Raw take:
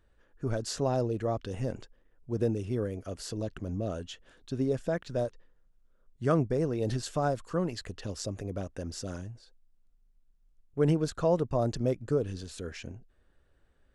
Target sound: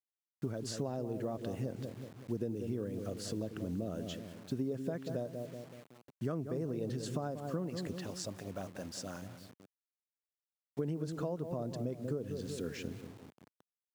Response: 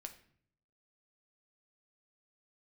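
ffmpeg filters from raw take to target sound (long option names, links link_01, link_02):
-filter_complex "[0:a]agate=range=-33dB:threshold=-52dB:ratio=3:detection=peak,asettb=1/sr,asplit=3[link_01][link_02][link_03];[link_01]atrim=end=7.944[link_04];[link_02]atrim=start=7.94:end=10.79,asetpts=PTS-STARTPTS,afade=type=in:duration=0.004:curve=qsin,afade=type=out:start_time=2.846:duration=0.004:curve=qsin,lowshelf=frequency=570:width_type=q:width=1.5:gain=-8[link_05];[link_03]atrim=start=10.786[link_06];[link_04][link_05]acrossfade=duration=0.004:curve1=hsin:curve2=qsin[link_07];[link_07][link_06]acrossfade=duration=0.004:curve1=qsin:curve2=hsin,asplit=2[link_08][link_09];[link_09]adelay=188,lowpass=frequency=830:poles=1,volume=-9dB,asplit=2[link_10][link_11];[link_11]adelay=188,lowpass=frequency=830:poles=1,volume=0.51,asplit=2[link_12][link_13];[link_13]adelay=188,lowpass=frequency=830:poles=1,volume=0.51,asplit=2[link_14][link_15];[link_15]adelay=188,lowpass=frequency=830:poles=1,volume=0.51,asplit=2[link_16][link_17];[link_17]adelay=188,lowpass=frequency=830:poles=1,volume=0.51,asplit=2[link_18][link_19];[link_19]adelay=188,lowpass=frequency=830:poles=1,volume=0.51[link_20];[link_08][link_10][link_12][link_14][link_16][link_18][link_20]amix=inputs=7:normalize=0,acrusher=bits=8:mix=0:aa=0.000001,acompressor=threshold=-34dB:ratio=12,highpass=110,equalizer=frequency=210:width=0.56:gain=6,volume=-2.5dB"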